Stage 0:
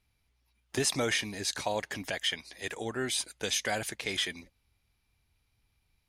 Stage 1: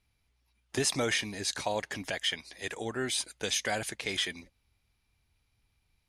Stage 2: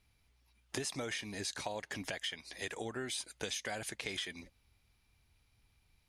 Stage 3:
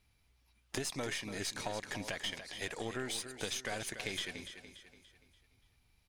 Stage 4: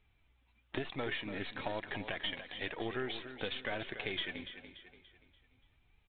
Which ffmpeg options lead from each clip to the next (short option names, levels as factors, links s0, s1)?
-af "lowpass=f=12000:w=0.5412,lowpass=f=12000:w=1.3066"
-af "acompressor=threshold=0.01:ratio=5,volume=1.33"
-af "aecho=1:1:289|578|867|1156|1445:0.316|0.136|0.0585|0.0251|0.0108,aeval=exprs='0.1*(cos(1*acos(clip(val(0)/0.1,-1,1)))-cos(1*PI/2))+0.00562*(cos(8*acos(clip(val(0)/0.1,-1,1)))-cos(8*PI/2))':c=same"
-af "flanger=delay=2.3:depth=1.8:regen=62:speed=1:shape=triangular,aecho=1:1:174:0.0668,aresample=8000,aresample=44100,volume=1.88"